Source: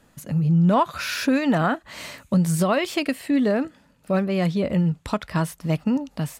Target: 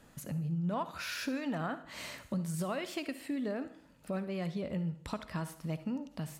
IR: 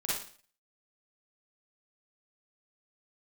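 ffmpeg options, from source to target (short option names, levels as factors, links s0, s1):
-filter_complex "[0:a]acompressor=threshold=0.00794:ratio=2,asplit=2[s0][s1];[1:a]atrim=start_sample=2205,asetrate=35280,aresample=44100[s2];[s1][s2]afir=irnorm=-1:irlink=0,volume=0.133[s3];[s0][s3]amix=inputs=2:normalize=0,volume=0.708"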